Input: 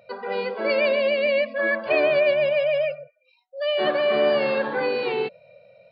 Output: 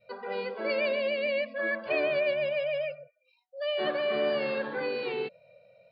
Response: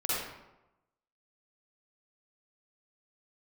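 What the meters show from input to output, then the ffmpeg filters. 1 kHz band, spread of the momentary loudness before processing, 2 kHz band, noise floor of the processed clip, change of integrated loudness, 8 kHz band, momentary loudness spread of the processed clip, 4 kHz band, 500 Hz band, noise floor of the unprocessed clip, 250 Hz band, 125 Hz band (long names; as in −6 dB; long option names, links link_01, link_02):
−9.0 dB, 9 LU, −7.0 dB, −71 dBFS, −7.5 dB, can't be measured, 9 LU, −6.5 dB, −8.0 dB, −64 dBFS, −6.5 dB, −6.5 dB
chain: -af "adynamicequalizer=threshold=0.02:dfrequency=830:dqfactor=1.6:tfrequency=830:tqfactor=1.6:attack=5:release=100:ratio=0.375:range=2.5:mode=cutabove:tftype=bell,volume=-6.5dB"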